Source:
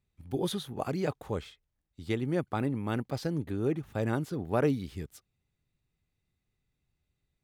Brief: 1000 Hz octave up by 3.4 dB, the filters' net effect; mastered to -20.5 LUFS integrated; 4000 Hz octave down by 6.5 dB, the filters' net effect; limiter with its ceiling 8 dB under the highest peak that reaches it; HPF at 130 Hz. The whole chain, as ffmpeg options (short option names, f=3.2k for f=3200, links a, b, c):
-af "highpass=130,equalizer=f=1k:t=o:g=5,equalizer=f=4k:t=o:g=-8,volume=14dB,alimiter=limit=-6dB:level=0:latency=1"